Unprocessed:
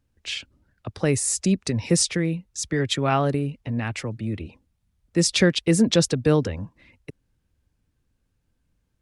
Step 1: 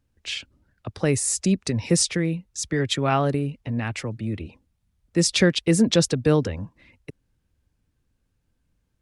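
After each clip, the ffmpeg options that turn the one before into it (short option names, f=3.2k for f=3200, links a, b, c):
-af anull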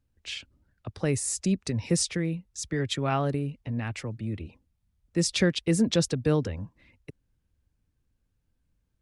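-af "lowshelf=f=130:g=4.5,volume=-6dB"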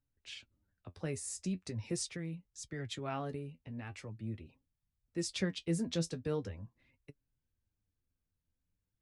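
-af "flanger=delay=7:depth=5.2:regen=44:speed=0.42:shape=sinusoidal,volume=-7.5dB"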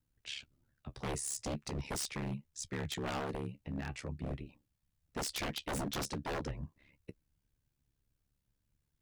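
-af "aeval=exprs='val(0)*sin(2*PI*35*n/s)':c=same,aeval=exprs='0.0119*(abs(mod(val(0)/0.0119+3,4)-2)-1)':c=same,volume=7.5dB"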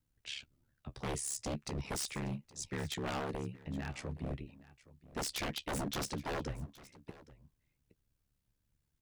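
-af "aecho=1:1:819:0.106"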